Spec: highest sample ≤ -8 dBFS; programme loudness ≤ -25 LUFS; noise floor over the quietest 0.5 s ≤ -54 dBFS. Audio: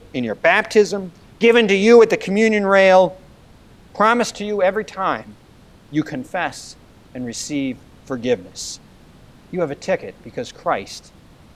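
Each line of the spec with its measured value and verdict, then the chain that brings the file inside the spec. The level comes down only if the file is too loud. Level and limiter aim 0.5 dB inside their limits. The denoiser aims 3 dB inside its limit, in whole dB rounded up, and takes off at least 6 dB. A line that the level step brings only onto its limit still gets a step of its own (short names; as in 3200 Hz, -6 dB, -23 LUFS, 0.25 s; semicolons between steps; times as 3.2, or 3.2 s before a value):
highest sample -1.5 dBFS: fail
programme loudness -17.5 LUFS: fail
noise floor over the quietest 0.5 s -47 dBFS: fail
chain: gain -8 dB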